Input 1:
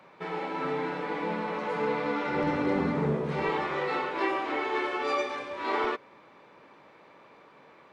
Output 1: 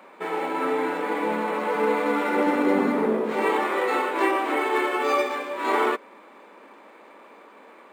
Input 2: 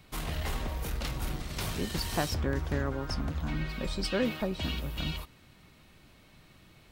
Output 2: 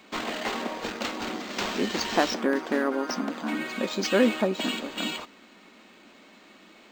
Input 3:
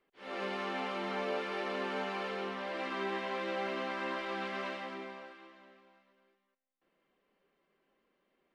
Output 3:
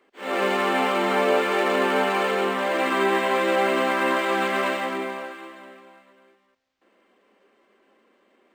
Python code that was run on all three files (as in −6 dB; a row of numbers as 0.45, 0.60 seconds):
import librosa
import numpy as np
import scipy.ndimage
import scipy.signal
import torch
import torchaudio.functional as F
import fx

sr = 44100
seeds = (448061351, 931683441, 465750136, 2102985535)

y = fx.brickwall_highpass(x, sr, low_hz=190.0)
y = np.interp(np.arange(len(y)), np.arange(len(y))[::4], y[::4])
y = librosa.util.normalize(y) * 10.0 ** (-9 / 20.0)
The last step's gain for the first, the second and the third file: +6.5, +8.5, +15.5 decibels